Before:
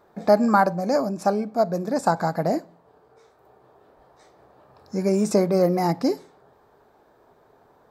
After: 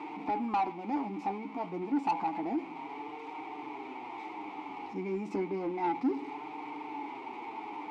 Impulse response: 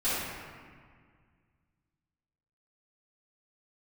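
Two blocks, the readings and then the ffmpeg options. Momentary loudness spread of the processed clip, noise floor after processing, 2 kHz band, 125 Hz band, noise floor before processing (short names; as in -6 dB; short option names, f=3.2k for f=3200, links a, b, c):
11 LU, -44 dBFS, -10.0 dB, -18.5 dB, -59 dBFS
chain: -filter_complex "[0:a]aeval=exprs='val(0)+0.5*0.0473*sgn(val(0))':c=same,highshelf=f=3.2k:g=-9,flanger=delay=6.5:depth=4.5:regen=35:speed=0.3:shape=sinusoidal,asplit=3[a][b][c];[a]bandpass=f=300:t=q:w=8,volume=0dB[d];[b]bandpass=f=870:t=q:w=8,volume=-6dB[e];[c]bandpass=f=2.24k:t=q:w=8,volume=-9dB[f];[d][e][f]amix=inputs=3:normalize=0,asplit=2[g][h];[h]highpass=f=720:p=1,volume=17dB,asoftclip=type=tanh:threshold=-20.5dB[i];[g][i]amix=inputs=2:normalize=0,lowpass=f=5.8k:p=1,volume=-6dB"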